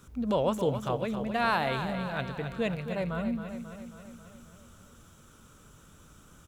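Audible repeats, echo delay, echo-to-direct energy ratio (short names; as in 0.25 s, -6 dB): 6, 0.27 s, -7.0 dB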